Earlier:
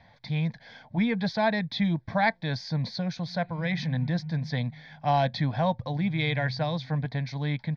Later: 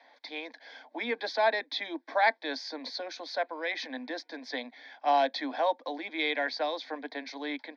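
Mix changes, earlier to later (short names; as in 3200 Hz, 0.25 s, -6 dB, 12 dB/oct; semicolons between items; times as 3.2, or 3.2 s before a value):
background -9.0 dB; master: add steep high-pass 260 Hz 96 dB/oct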